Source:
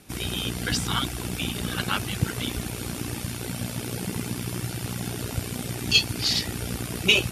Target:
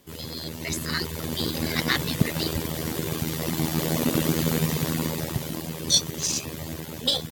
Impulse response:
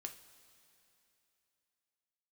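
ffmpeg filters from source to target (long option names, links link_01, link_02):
-af "asetrate=58866,aresample=44100,atempo=0.749154,dynaudnorm=framelen=440:gausssize=5:maxgain=15dB,aeval=exprs='0.944*(cos(1*acos(clip(val(0)/0.944,-1,1)))-cos(1*PI/2))+0.0188*(cos(7*acos(clip(val(0)/0.944,-1,1)))-cos(7*PI/2))':channel_layout=same,volume=-4.5dB"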